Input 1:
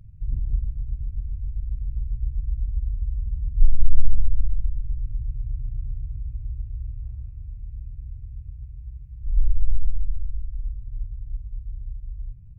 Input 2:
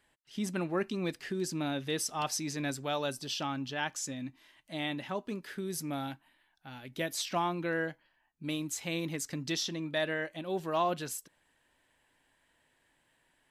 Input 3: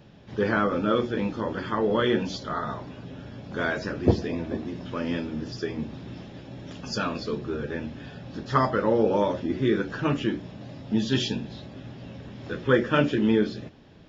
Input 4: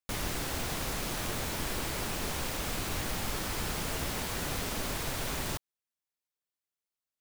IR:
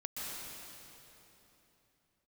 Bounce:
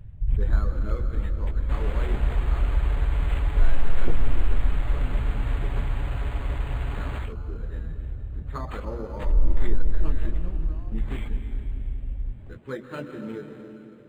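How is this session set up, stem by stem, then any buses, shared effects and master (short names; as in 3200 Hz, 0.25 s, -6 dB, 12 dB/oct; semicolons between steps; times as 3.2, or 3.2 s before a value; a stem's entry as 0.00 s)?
+3.0 dB, 0.00 s, no send, limiter -13 dBFS, peak gain reduction 10.5 dB
-9.0 dB, 0.00 s, no send, resonant low shelf 220 Hz +12 dB, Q 1.5; negative-ratio compressor -35 dBFS, ratio -0.5
-15.5 dB, 0.00 s, send -3.5 dB, reverb removal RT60 0.77 s
-5.5 dB, 1.60 s, no send, comb 7.1 ms, depth 92%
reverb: on, RT60 3.4 s, pre-delay 0.115 s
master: decimation joined by straight lines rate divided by 8×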